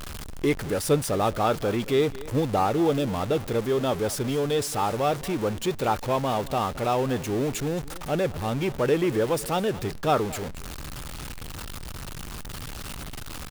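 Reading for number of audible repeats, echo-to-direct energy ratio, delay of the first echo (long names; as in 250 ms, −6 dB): 1, −18.5 dB, 220 ms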